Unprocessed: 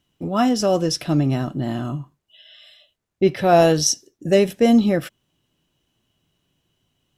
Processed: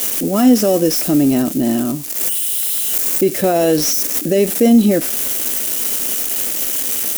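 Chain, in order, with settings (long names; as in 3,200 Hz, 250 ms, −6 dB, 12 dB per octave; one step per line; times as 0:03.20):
spike at every zero crossing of −19 dBFS
brickwall limiter −14 dBFS, peak gain reduction 10 dB
high-shelf EQ 4,000 Hz +10 dB
wave folding −13.5 dBFS
octave-band graphic EQ 125/250/500/1,000/4,000 Hz −11/+8/+4/−6/−5 dB
level +5 dB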